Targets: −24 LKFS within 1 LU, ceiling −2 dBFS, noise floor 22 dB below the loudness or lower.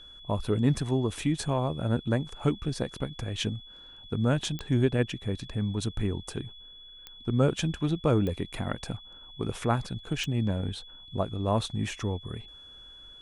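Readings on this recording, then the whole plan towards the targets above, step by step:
number of clicks 4; interfering tone 3,400 Hz; level of the tone −47 dBFS; integrated loudness −30.0 LKFS; sample peak −10.5 dBFS; target loudness −24.0 LKFS
→ click removal
notch filter 3,400 Hz, Q 30
level +6 dB

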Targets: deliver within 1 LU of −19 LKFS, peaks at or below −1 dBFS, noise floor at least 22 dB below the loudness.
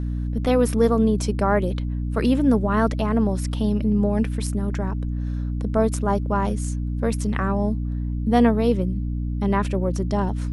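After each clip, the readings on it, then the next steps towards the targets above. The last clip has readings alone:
mains hum 60 Hz; hum harmonics up to 300 Hz; level of the hum −23 dBFS; integrated loudness −22.5 LKFS; sample peak −4.5 dBFS; target loudness −19.0 LKFS
→ mains-hum notches 60/120/180/240/300 Hz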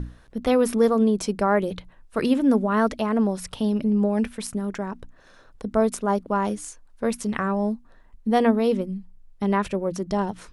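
mains hum none found; integrated loudness −24.0 LKFS; sample peak −7.0 dBFS; target loudness −19.0 LKFS
→ level +5 dB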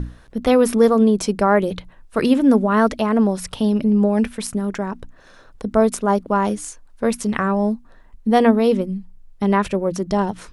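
integrated loudness −19.0 LKFS; sample peak −2.0 dBFS; background noise floor −48 dBFS

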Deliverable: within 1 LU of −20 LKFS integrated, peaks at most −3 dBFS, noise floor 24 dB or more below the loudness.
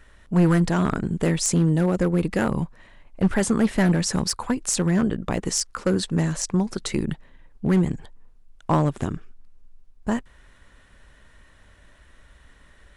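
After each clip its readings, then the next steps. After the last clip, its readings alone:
share of clipped samples 0.7%; peaks flattened at −12.5 dBFS; integrated loudness −23.5 LKFS; sample peak −12.5 dBFS; target loudness −20.0 LKFS
→ clipped peaks rebuilt −12.5 dBFS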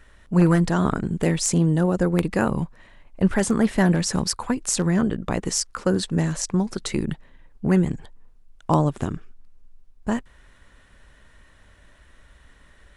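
share of clipped samples 0.0%; integrated loudness −23.0 LKFS; sample peak −3.5 dBFS; target loudness −20.0 LKFS
→ level +3 dB
brickwall limiter −3 dBFS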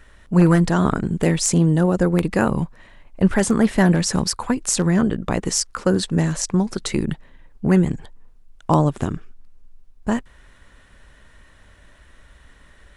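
integrated loudness −20.0 LKFS; sample peak −3.0 dBFS; background noise floor −51 dBFS

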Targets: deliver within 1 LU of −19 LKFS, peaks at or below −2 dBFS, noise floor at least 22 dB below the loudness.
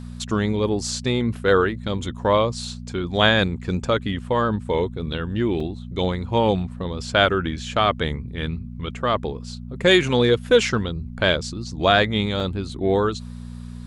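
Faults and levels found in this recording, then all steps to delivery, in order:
number of dropouts 2; longest dropout 3.4 ms; mains hum 60 Hz; hum harmonics up to 240 Hz; level of the hum −32 dBFS; integrated loudness −22.0 LKFS; sample peak −2.5 dBFS; target loudness −19.0 LKFS
→ repair the gap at 0:05.60/0:12.40, 3.4 ms
hum removal 60 Hz, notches 4
level +3 dB
brickwall limiter −2 dBFS

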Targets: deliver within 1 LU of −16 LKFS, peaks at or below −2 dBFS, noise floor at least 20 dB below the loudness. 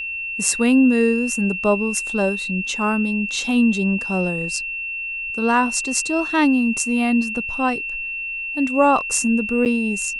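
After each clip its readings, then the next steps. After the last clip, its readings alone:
number of dropouts 1; longest dropout 8.7 ms; interfering tone 2,700 Hz; level of the tone −25 dBFS; integrated loudness −19.5 LKFS; sample peak −1.5 dBFS; target loudness −16.0 LKFS
→ repair the gap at 0:09.65, 8.7 ms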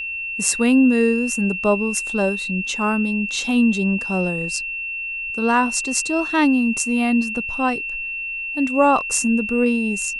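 number of dropouts 0; interfering tone 2,700 Hz; level of the tone −25 dBFS
→ notch filter 2,700 Hz, Q 30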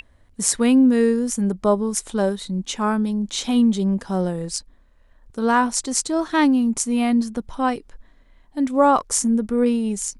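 interfering tone none found; integrated loudness −20.5 LKFS; sample peak −2.0 dBFS; target loudness −16.0 LKFS
→ level +4.5 dB
brickwall limiter −2 dBFS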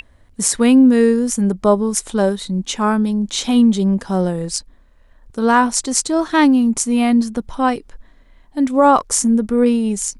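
integrated loudness −16.0 LKFS; sample peak −2.0 dBFS; background noise floor −50 dBFS

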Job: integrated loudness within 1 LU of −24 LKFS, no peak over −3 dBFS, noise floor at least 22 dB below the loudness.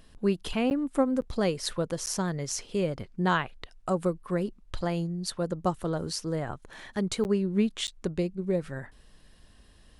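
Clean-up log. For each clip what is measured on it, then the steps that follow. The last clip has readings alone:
number of dropouts 5; longest dropout 9.6 ms; integrated loudness −30.0 LKFS; sample peak −13.0 dBFS; target loudness −24.0 LKFS
→ repair the gap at 0:00.70/0:01.21/0:02.06/0:07.24/0:07.87, 9.6 ms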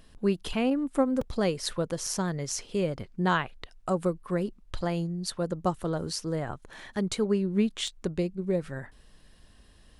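number of dropouts 0; integrated loudness −30.0 LKFS; sample peak −13.0 dBFS; target loudness −24.0 LKFS
→ level +6 dB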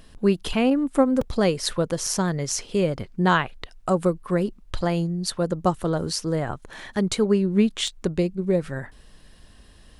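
integrated loudness −24.0 LKFS; sample peak −7.0 dBFS; background noise floor −51 dBFS

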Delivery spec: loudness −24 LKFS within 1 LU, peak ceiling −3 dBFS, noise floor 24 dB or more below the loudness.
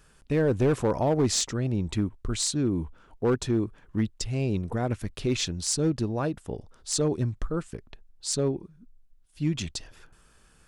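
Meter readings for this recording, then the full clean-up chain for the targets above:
share of clipped samples 0.8%; peaks flattened at −17.5 dBFS; integrated loudness −28.0 LKFS; sample peak −17.5 dBFS; target loudness −24.0 LKFS
→ clipped peaks rebuilt −17.5 dBFS
level +4 dB

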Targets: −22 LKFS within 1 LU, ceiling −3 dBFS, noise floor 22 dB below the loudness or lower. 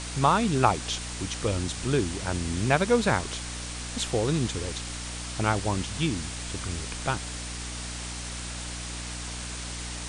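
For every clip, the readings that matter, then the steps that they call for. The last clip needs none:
mains hum 60 Hz; hum harmonics up to 300 Hz; level of the hum −36 dBFS; background noise floor −36 dBFS; target noise floor −51 dBFS; integrated loudness −28.5 LKFS; sample peak −5.5 dBFS; target loudness −22.0 LKFS
→ mains-hum notches 60/120/180/240/300 Hz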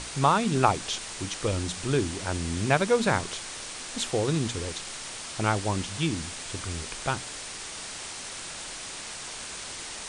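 mains hum none found; background noise floor −39 dBFS; target noise floor −51 dBFS
→ broadband denoise 12 dB, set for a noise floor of −39 dBFS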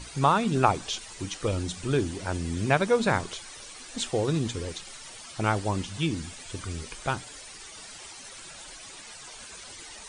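background noise floor −45 dBFS; target noise floor −51 dBFS
→ broadband denoise 6 dB, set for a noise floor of −45 dBFS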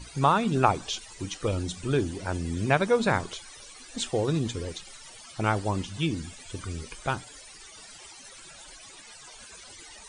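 background noise floor −48 dBFS; target noise floor −51 dBFS
→ broadband denoise 6 dB, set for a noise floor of −48 dBFS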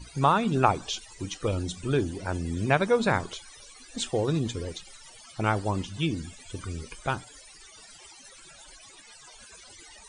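background noise floor −51 dBFS; integrated loudness −28.5 LKFS; sample peak −5.0 dBFS; target loudness −22.0 LKFS
→ level +6.5 dB
brickwall limiter −3 dBFS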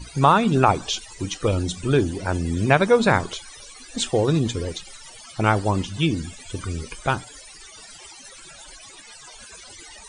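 integrated loudness −22.0 LKFS; sample peak −3.0 dBFS; background noise floor −44 dBFS

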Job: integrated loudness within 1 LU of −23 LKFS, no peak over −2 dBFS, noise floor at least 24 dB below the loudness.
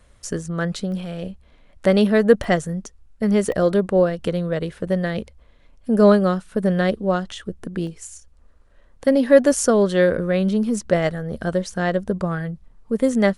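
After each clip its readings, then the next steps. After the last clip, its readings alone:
number of dropouts 4; longest dropout 1.1 ms; integrated loudness −20.5 LKFS; sample peak −1.0 dBFS; target loudness −23.0 LKFS
→ repair the gap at 0:00.92/0:02.44/0:03.52/0:07.87, 1.1 ms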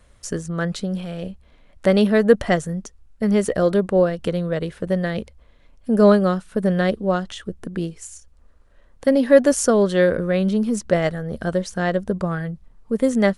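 number of dropouts 0; integrated loudness −20.5 LKFS; sample peak −1.0 dBFS; target loudness −23.0 LKFS
→ level −2.5 dB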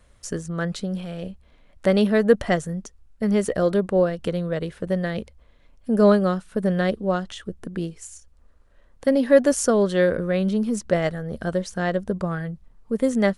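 integrated loudness −23.0 LKFS; sample peak −3.5 dBFS; background noise floor −56 dBFS

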